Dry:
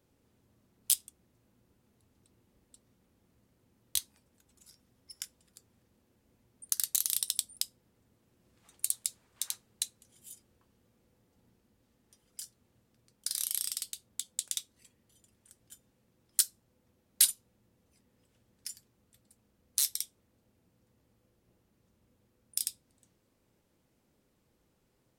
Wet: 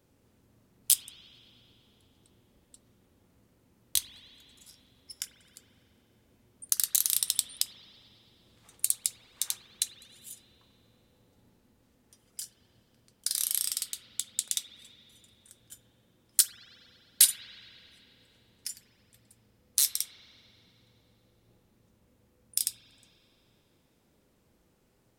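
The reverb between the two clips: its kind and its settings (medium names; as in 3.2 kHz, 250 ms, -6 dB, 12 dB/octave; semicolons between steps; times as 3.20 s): spring tank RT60 2.9 s, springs 44 ms, chirp 70 ms, DRR 7.5 dB; trim +4 dB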